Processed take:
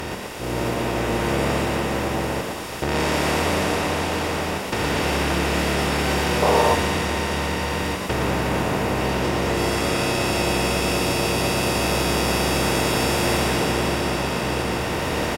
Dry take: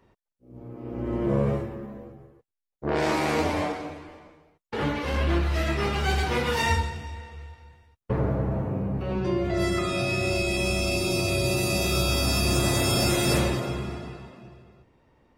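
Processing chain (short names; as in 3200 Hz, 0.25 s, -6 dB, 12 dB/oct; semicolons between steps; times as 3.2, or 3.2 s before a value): per-bin compression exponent 0.2; recorder AGC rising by 5.3 dB/s; notches 50/100 Hz; on a send: frequency-shifting echo 0.116 s, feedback 51%, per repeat +110 Hz, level -4.5 dB; on the sum: spectral gain 6.43–6.75, 370–1200 Hz +8 dB; gain -6 dB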